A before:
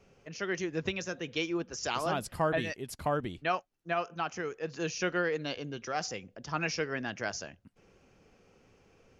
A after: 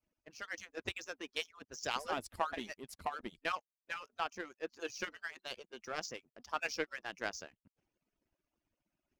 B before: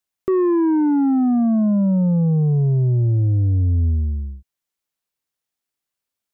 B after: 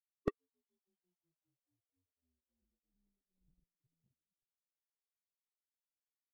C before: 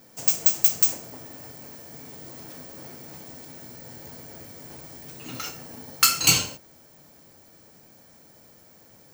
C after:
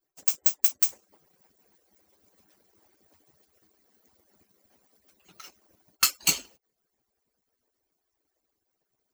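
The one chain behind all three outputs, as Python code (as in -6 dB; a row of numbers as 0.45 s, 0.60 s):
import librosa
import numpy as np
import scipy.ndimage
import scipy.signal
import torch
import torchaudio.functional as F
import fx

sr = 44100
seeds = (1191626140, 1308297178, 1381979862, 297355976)

y = fx.hpss_only(x, sr, part='percussive')
y = fx.power_curve(y, sr, exponent=1.4)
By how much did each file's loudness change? -7.5 LU, -24.5 LU, -3.0 LU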